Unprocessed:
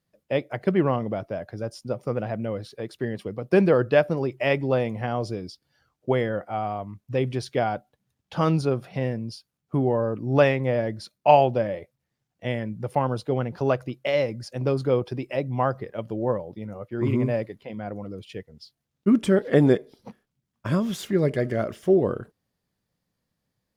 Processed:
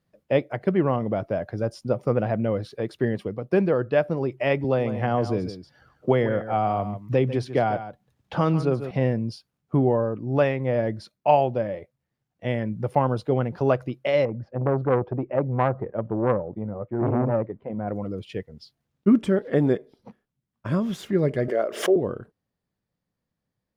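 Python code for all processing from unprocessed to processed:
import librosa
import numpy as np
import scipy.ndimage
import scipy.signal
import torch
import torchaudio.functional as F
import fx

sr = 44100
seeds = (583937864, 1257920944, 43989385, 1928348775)

y = fx.chain(x, sr, fx.echo_single(ms=145, db=-13.0),
    fx.band_squash(depth_pct=40), at=(4.64, 8.91))
y = fx.chain(y, sr, fx.lowpass(hz=1100.0, slope=12),
    fx.transformer_sat(knee_hz=780.0), at=(14.25, 17.88))
y = fx.chain(y, sr, fx.highpass_res(hz=450.0, q=1.7),
    fx.pre_swell(db_per_s=120.0), at=(21.48, 21.96))
y = fx.high_shelf(y, sr, hz=3400.0, db=-9.0)
y = fx.rider(y, sr, range_db=4, speed_s=0.5)
y = F.gain(torch.from_numpy(y), 1.0).numpy()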